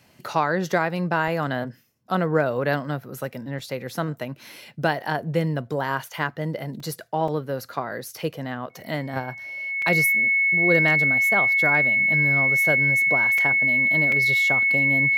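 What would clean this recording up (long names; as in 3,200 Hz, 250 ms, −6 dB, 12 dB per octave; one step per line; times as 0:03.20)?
clipped peaks rebuilt −8 dBFS
notch filter 2,200 Hz, Q 30
repair the gap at 0:01.28/0:03.59/0:06.80/0:07.28/0:09.82/0:13.38/0:14.12, 3.1 ms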